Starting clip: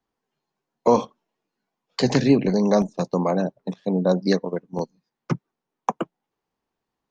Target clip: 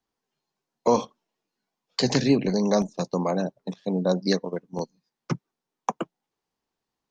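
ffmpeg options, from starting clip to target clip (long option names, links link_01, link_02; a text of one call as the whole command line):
ffmpeg -i in.wav -af "equalizer=frequency=5400:width=0.74:gain=6.5,volume=-3.5dB" out.wav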